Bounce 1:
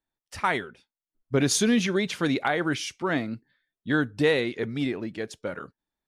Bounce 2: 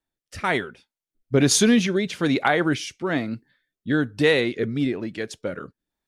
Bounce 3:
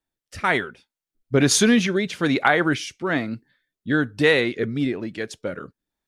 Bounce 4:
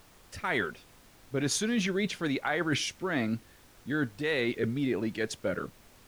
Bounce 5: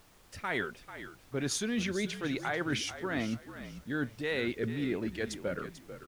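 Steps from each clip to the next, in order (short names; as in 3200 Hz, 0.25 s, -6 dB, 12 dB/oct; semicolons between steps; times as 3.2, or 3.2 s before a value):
rotary speaker horn 1.1 Hz; gain +5.5 dB
dynamic EQ 1500 Hz, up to +4 dB, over -33 dBFS, Q 0.91
reverse; compressor 10:1, threshold -26 dBFS, peak gain reduction 14.5 dB; reverse; added noise pink -57 dBFS
frequency-shifting echo 0.442 s, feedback 30%, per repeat -50 Hz, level -12 dB; gain -3.5 dB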